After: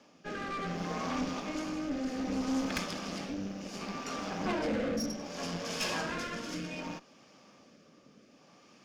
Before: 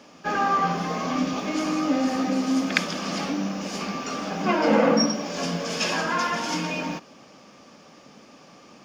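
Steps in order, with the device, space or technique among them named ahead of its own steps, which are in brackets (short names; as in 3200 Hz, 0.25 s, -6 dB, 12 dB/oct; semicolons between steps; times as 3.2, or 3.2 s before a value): overdriven rotary cabinet (tube stage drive 23 dB, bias 0.75; rotary speaker horn 0.65 Hz); gain -3 dB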